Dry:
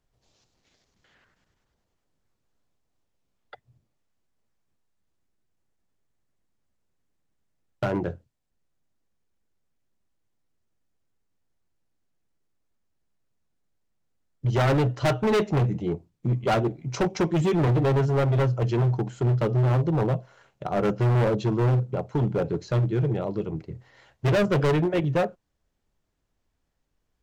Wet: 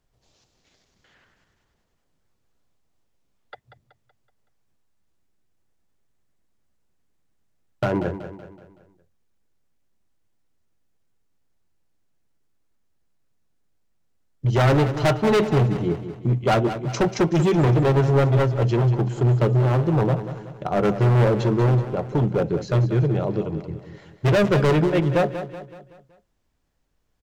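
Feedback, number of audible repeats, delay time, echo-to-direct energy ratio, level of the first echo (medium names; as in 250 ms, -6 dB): 47%, 4, 188 ms, -10.0 dB, -11.0 dB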